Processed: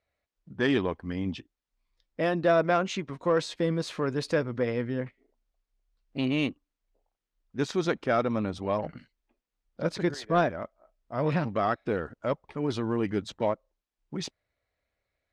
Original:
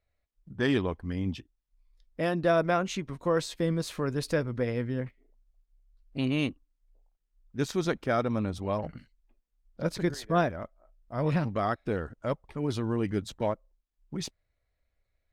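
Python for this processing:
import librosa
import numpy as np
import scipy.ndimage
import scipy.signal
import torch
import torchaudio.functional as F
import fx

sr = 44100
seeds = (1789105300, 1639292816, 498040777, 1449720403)

p1 = fx.highpass(x, sr, hz=210.0, slope=6)
p2 = fx.air_absorb(p1, sr, metres=70.0)
p3 = 10.0 ** (-24.0 / 20.0) * np.tanh(p2 / 10.0 ** (-24.0 / 20.0))
y = p2 + (p3 * 10.0 ** (-5.0 / 20.0))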